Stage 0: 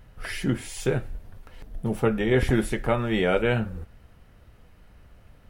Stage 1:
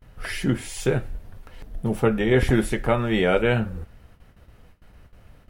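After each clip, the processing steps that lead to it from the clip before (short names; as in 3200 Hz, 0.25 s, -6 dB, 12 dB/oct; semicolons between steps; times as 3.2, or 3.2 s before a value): gate with hold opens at -43 dBFS; gain +2.5 dB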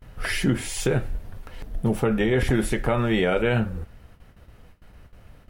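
in parallel at +2.5 dB: vocal rider within 3 dB; on the sum: limiter -7.5 dBFS, peak gain reduction 7 dB; gain -5 dB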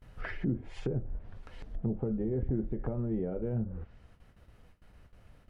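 treble ducked by the level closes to 390 Hz, closed at -19.5 dBFS; gain -8.5 dB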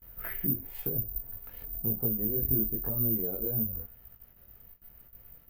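chorus voices 2, 0.97 Hz, delay 20 ms, depth 3.1 ms; careless resampling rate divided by 3×, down none, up zero stuff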